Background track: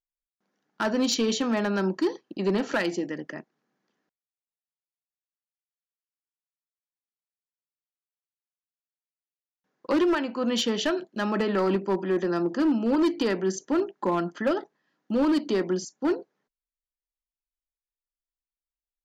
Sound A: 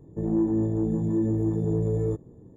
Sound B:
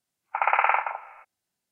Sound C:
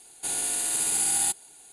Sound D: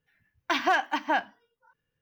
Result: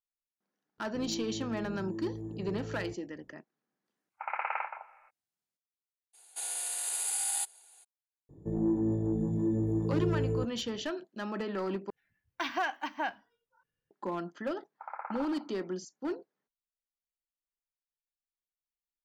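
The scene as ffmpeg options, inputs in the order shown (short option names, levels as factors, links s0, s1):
-filter_complex "[1:a]asplit=2[s0][s1];[2:a]asplit=2[s2][s3];[0:a]volume=0.316[s4];[3:a]highpass=f=520:w=0.5412,highpass=f=520:w=1.3066[s5];[s3]lowpass=f=1500:w=0.5412,lowpass=f=1500:w=1.3066[s6];[s4]asplit=2[s7][s8];[s7]atrim=end=11.904[s9];[4:a]atrim=end=2.01,asetpts=PTS-STARTPTS,volume=0.398[s10];[s8]atrim=start=13.906[s11];[s0]atrim=end=2.56,asetpts=PTS-STARTPTS,volume=0.168,afade=t=in:d=0.004:c=hsin,afade=t=out:st=2.556:d=0.004:c=hsin,adelay=780[s12];[s2]atrim=end=1.71,asetpts=PTS-STARTPTS,volume=0.237,afade=t=in:d=0.004:c=hsin,afade=t=out:st=1.706:d=0.004:c=hsin,adelay=3860[s13];[s5]atrim=end=1.72,asetpts=PTS-STARTPTS,volume=0.422,afade=t=in:d=0.02,afade=t=out:st=1.7:d=0.02,adelay=6130[s14];[s1]atrim=end=2.56,asetpts=PTS-STARTPTS,volume=0.562,afade=t=in:d=0.004:c=hsin,afade=t=out:st=2.556:d=0.004:c=hsin,adelay=8290[s15];[s6]atrim=end=1.71,asetpts=PTS-STARTPTS,volume=0.126,afade=t=in:d=0.004:c=hsin,afade=t=out:st=1.706:d=0.004:c=hsin,adelay=14460[s16];[s9][s10]acrossfade=d=0.004:c1=hsin:c2=hsin[s17];[s17][s11]acrossfade=d=0.004:c1=hsin:c2=hsin[s18];[s18][s12][s13][s14][s15][s16]amix=inputs=6:normalize=0"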